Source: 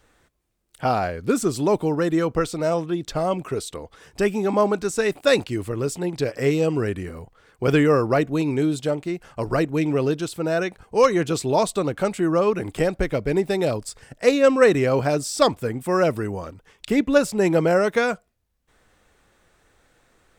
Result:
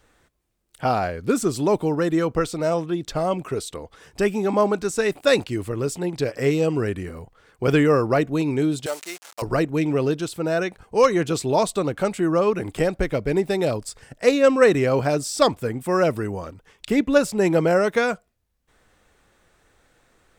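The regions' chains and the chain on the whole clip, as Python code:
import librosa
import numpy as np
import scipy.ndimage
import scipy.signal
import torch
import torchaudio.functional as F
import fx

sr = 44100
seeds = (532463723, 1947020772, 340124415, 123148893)

y = fx.chain(x, sr, fx.delta_hold(step_db=-41.0),
    fx.highpass(hz=680.0, slope=12),
    fx.peak_eq(hz=7800.0, db=13.5, octaves=2.2), at=(8.86, 9.42))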